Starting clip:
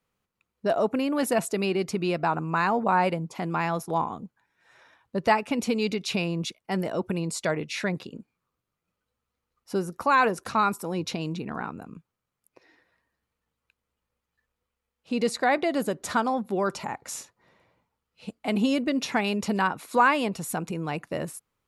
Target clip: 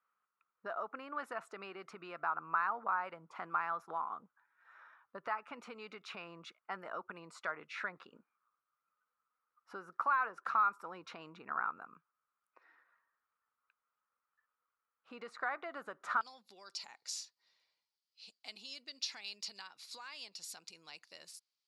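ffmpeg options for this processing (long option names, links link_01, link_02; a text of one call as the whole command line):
ffmpeg -i in.wav -af "acompressor=threshold=-29dB:ratio=4,asetnsamples=nb_out_samples=441:pad=0,asendcmd='16.21 bandpass f 4700',bandpass=frequency=1300:width_type=q:width=4.7:csg=0,volume=5.5dB" out.wav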